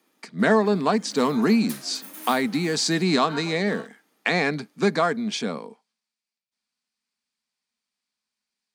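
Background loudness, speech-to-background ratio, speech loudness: -41.5 LUFS, 18.0 dB, -23.5 LUFS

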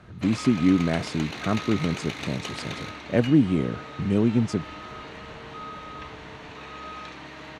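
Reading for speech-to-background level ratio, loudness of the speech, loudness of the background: 12.0 dB, -25.0 LUFS, -37.0 LUFS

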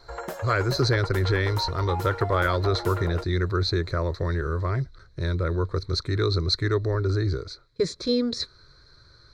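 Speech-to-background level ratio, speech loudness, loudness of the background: 9.0 dB, -26.0 LUFS, -35.0 LUFS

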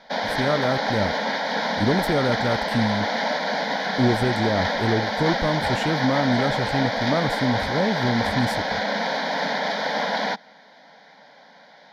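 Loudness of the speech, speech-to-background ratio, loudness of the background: -25.0 LUFS, -0.5 dB, -24.5 LUFS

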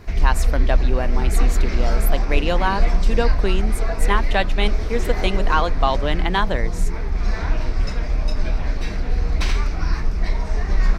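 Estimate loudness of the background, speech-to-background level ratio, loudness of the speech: -24.0 LUFS, -1.0 dB, -25.0 LUFS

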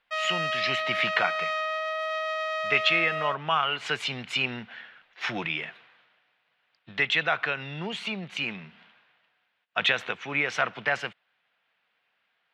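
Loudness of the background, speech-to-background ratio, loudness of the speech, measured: -29.0 LUFS, 1.5 dB, -27.5 LUFS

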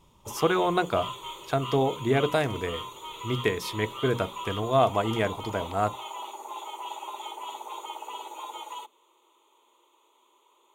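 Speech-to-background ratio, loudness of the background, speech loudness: 10.5 dB, -38.0 LUFS, -27.5 LUFS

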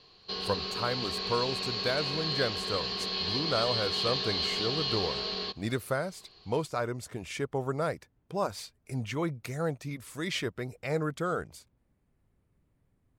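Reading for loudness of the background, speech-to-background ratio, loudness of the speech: -31.0 LUFS, -3.0 dB, -34.0 LUFS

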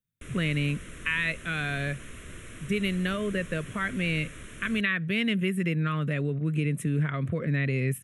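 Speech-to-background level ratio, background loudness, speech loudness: 16.0 dB, -44.5 LUFS, -28.5 LUFS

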